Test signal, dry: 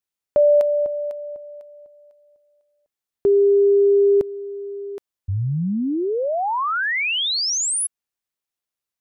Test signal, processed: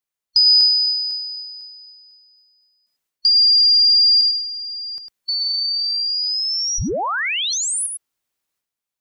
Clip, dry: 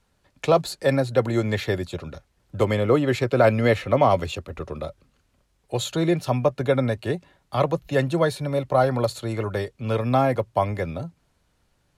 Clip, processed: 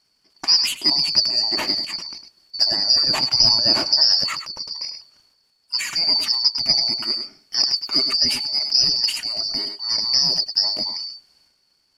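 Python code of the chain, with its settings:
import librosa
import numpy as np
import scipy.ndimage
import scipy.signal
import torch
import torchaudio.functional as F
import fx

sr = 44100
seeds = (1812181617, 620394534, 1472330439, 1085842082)

y = fx.band_shuffle(x, sr, order='2341')
y = y + 10.0 ** (-14.0 / 20.0) * np.pad(y, (int(102 * sr / 1000.0), 0))[:len(y)]
y = fx.transient(y, sr, attack_db=2, sustain_db=8)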